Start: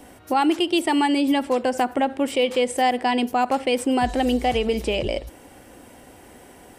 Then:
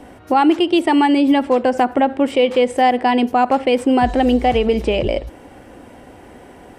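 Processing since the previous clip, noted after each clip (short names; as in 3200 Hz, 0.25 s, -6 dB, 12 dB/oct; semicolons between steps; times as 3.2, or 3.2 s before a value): LPF 2100 Hz 6 dB/oct; gain +6.5 dB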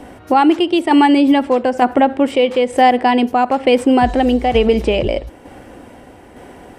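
tremolo saw down 1.1 Hz, depth 45%; gain +4 dB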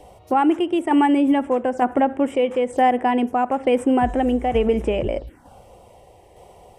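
envelope phaser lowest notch 210 Hz, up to 4400 Hz, full sweep at -13 dBFS; gain -5.5 dB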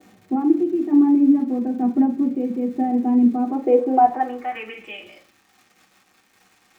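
band-pass sweep 220 Hz -> 5700 Hz, 3.3–5.26; crackle 240/s -42 dBFS; reverb RT60 0.35 s, pre-delay 3 ms, DRR -7 dB; gain -4 dB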